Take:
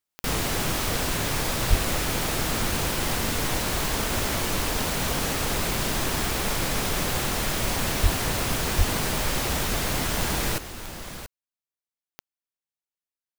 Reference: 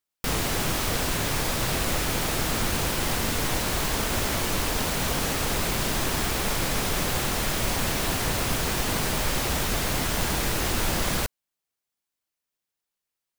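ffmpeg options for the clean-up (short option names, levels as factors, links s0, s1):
-filter_complex "[0:a]adeclick=t=4,asplit=3[s0][s1][s2];[s0]afade=t=out:st=1.69:d=0.02[s3];[s1]highpass=f=140:w=0.5412,highpass=f=140:w=1.3066,afade=t=in:st=1.69:d=0.02,afade=t=out:st=1.81:d=0.02[s4];[s2]afade=t=in:st=1.81:d=0.02[s5];[s3][s4][s5]amix=inputs=3:normalize=0,asplit=3[s6][s7][s8];[s6]afade=t=out:st=8.02:d=0.02[s9];[s7]highpass=f=140:w=0.5412,highpass=f=140:w=1.3066,afade=t=in:st=8.02:d=0.02,afade=t=out:st=8.14:d=0.02[s10];[s8]afade=t=in:st=8.14:d=0.02[s11];[s9][s10][s11]amix=inputs=3:normalize=0,asplit=3[s12][s13][s14];[s12]afade=t=out:st=8.77:d=0.02[s15];[s13]highpass=f=140:w=0.5412,highpass=f=140:w=1.3066,afade=t=in:st=8.77:d=0.02,afade=t=out:st=8.89:d=0.02[s16];[s14]afade=t=in:st=8.89:d=0.02[s17];[s15][s16][s17]amix=inputs=3:normalize=0,asetnsamples=n=441:p=0,asendcmd='10.58 volume volume 12dB',volume=1"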